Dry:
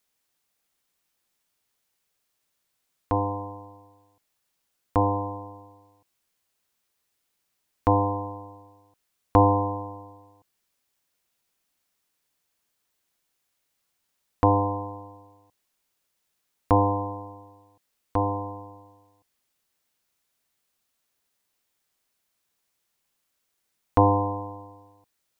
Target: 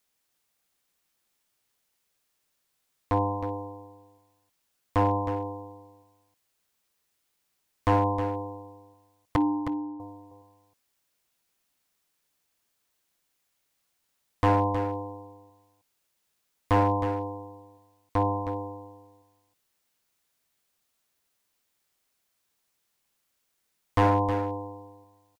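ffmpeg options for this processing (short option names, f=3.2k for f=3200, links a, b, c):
-filter_complex "[0:a]asettb=1/sr,asplit=3[a][b][c];[a]atrim=end=9.364[d];[b]atrim=start=9.36:end=10,asetpts=PTS-STARTPTS,afade=t=in:d=0.004:c=qsin,afade=t=out:st=0.636:d=0.004:c=qsin,asplit=3[e][f][g];[e]bandpass=f=300:t=q:w=8,volume=0dB[h];[f]bandpass=f=870:t=q:w=8,volume=-6dB[i];[g]bandpass=f=2.24k:t=q:w=8,volume=-9dB[j];[h][i][j]amix=inputs=3:normalize=0[k];[c]atrim=start=9.996[l];[d][k]acrossfade=d=0.004:c1=hsin:c2=qsin[m];[m][l]acrossfade=d=0.004:c1=qsin:c2=hsin,asoftclip=type=hard:threshold=-17dB,aecho=1:1:315:0.355"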